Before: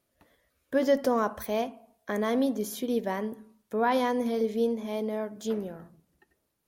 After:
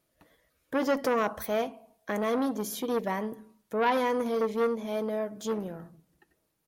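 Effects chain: comb 6.3 ms, depth 30%; core saturation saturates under 1100 Hz; gain +1 dB

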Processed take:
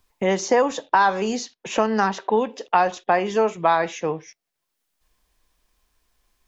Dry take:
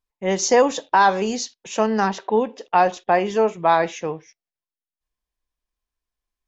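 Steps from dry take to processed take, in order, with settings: dynamic EQ 1300 Hz, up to +4 dB, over -30 dBFS, Q 1.3; three-band squash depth 70%; gain -2.5 dB

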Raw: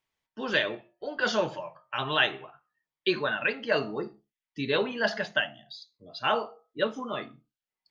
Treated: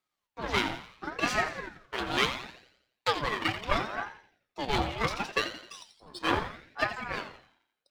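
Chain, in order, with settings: half-wave gain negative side -12 dB; thinning echo 86 ms, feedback 48%, high-pass 420 Hz, level -10 dB; ring modulator with a swept carrier 800 Hz, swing 60%, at 0.72 Hz; gain +3.5 dB

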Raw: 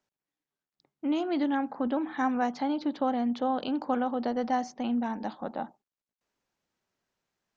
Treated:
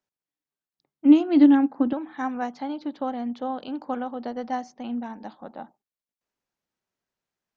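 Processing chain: 1.05–1.93 small resonant body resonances 290/2700 Hz, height 11 dB, ringing for 45 ms; upward expander 1.5:1, over -34 dBFS; gain +5 dB

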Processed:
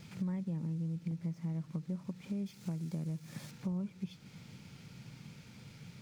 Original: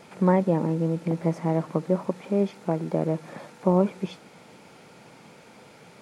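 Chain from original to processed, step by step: median filter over 5 samples; EQ curve 130 Hz 0 dB, 380 Hz -21 dB, 700 Hz -26 dB, 5700 Hz -2 dB; compressor 4:1, threshold -46 dBFS, peak gain reduction 16 dB; high shelf 5300 Hz -8 dB, from 2.46 s +3.5 dB, from 3.51 s -9.5 dB; gain +8.5 dB

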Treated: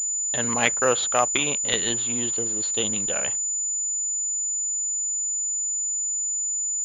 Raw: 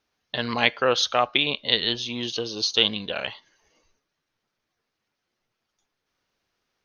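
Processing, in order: 2.29–2.92 bell 1600 Hz -9.5 dB 2.5 oct; backlash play -34 dBFS; pulse-width modulation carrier 7000 Hz

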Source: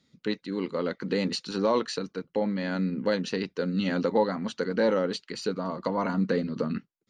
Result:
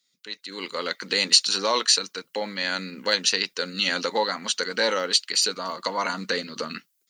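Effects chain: differentiator; AGC gain up to 16 dB; gain +5 dB

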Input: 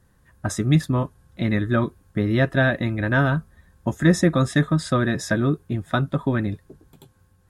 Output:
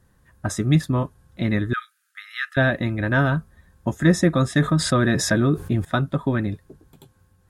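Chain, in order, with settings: 1.73–2.57 brick-wall FIR high-pass 1200 Hz; 4.6–5.85 fast leveller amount 50%

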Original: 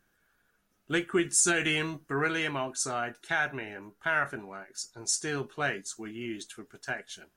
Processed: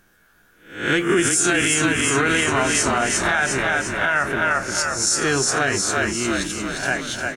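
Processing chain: spectral swells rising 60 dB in 0.48 s; frequency-shifting echo 0.352 s, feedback 56%, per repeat -32 Hz, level -5 dB; maximiser +20 dB; gain -8.5 dB

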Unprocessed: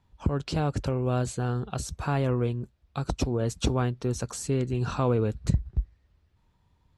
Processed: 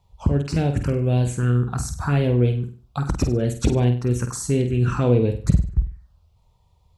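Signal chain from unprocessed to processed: envelope phaser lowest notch 270 Hz, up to 1300 Hz, full sweep at -21.5 dBFS; flutter echo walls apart 8.4 m, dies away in 0.39 s; gain +7 dB

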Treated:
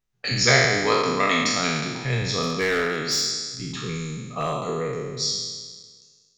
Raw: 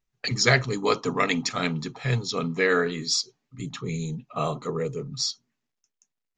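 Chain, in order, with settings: spectral trails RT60 1.53 s; 2.42–4.66 hard clip -16.5 dBFS, distortion -20 dB; gain -1.5 dB

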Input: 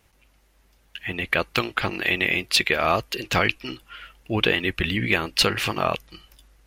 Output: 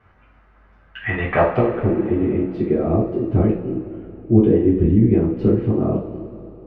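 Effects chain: low-pass sweep 1400 Hz -> 340 Hz, 1.13–1.92; two-slope reverb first 0.39 s, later 3.2 s, from -18 dB, DRR -7 dB

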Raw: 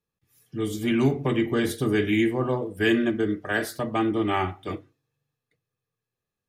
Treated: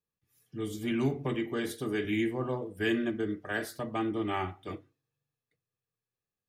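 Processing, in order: 1.35–2.05 HPF 200 Hz 6 dB/oct; gain -7.5 dB

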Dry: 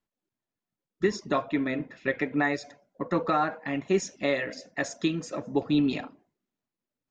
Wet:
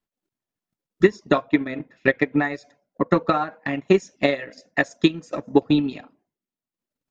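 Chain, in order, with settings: transient shaper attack +11 dB, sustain -7 dB

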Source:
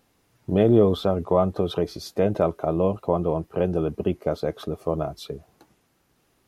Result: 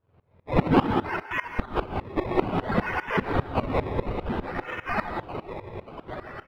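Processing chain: spectrum mirrored in octaves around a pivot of 1100 Hz; low shelf 440 Hz -9 dB; comb 2 ms, depth 65%; in parallel at +2 dB: limiter -19.5 dBFS, peak gain reduction 10 dB; 1.05–1.74 on the sum: level quantiser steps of 23 dB; on a send: delay with a stepping band-pass 0.605 s, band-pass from 910 Hz, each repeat 0.7 oct, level -4 dB; on the sum: decimation with a swept rate 20×, swing 100% 0.58 Hz; air absorption 440 m; non-linear reverb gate 0.18 s rising, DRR 5.5 dB; dB-ramp tremolo swelling 5 Hz, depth 20 dB; gain +4 dB

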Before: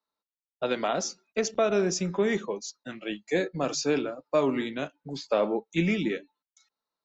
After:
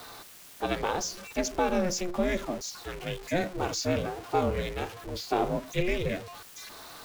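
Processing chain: zero-crossing step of -35 dBFS; ring modulator 180 Hz

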